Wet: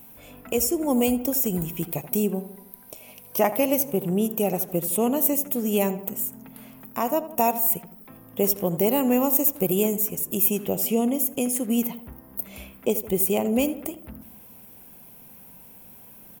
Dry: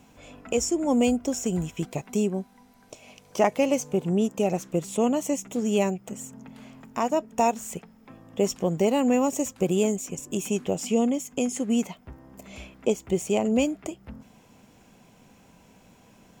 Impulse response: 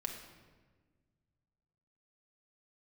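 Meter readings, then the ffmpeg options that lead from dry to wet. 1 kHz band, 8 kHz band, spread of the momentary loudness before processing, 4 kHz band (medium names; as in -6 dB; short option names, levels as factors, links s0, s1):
+0.5 dB, +3.5 dB, 15 LU, 0.0 dB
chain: -filter_complex "[0:a]aexciter=amount=15.9:drive=5.6:freq=10000,asplit=2[s0][s1];[s1]adelay=81,lowpass=f=2100:p=1,volume=0.224,asplit=2[s2][s3];[s3]adelay=81,lowpass=f=2100:p=1,volume=0.54,asplit=2[s4][s5];[s5]adelay=81,lowpass=f=2100:p=1,volume=0.54,asplit=2[s6][s7];[s7]adelay=81,lowpass=f=2100:p=1,volume=0.54,asplit=2[s8][s9];[s9]adelay=81,lowpass=f=2100:p=1,volume=0.54,asplit=2[s10][s11];[s11]adelay=81,lowpass=f=2100:p=1,volume=0.54[s12];[s0][s2][s4][s6][s8][s10][s12]amix=inputs=7:normalize=0"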